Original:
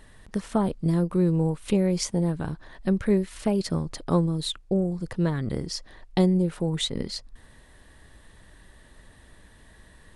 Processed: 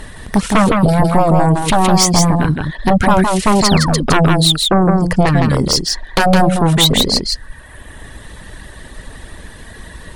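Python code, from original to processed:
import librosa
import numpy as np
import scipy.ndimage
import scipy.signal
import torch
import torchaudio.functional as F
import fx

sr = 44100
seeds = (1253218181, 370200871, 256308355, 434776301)

y = fx.fold_sine(x, sr, drive_db=14, ceiling_db=-8.5)
y = fx.dereverb_blind(y, sr, rt60_s=1.4)
y = y + 10.0 ** (-3.5 / 20.0) * np.pad(y, (int(162 * sr / 1000.0), 0))[:len(y)]
y = fx.spec_paint(y, sr, seeds[0], shape='fall', start_s=3.62, length_s=0.44, low_hz=200.0, high_hz=7900.0, level_db=-25.0)
y = F.gain(torch.from_numpy(y), 2.0).numpy()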